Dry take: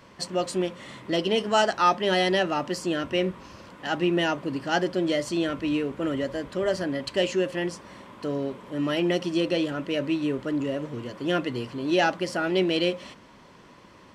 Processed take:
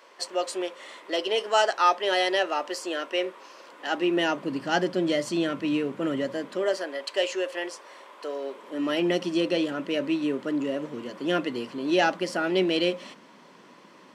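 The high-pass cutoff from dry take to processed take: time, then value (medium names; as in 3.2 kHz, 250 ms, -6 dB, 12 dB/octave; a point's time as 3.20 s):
high-pass 24 dB/octave
3.60 s 390 Hz
4.62 s 140 Hz
6.31 s 140 Hz
6.87 s 420 Hz
8.40 s 420 Hz
9.04 s 180 Hz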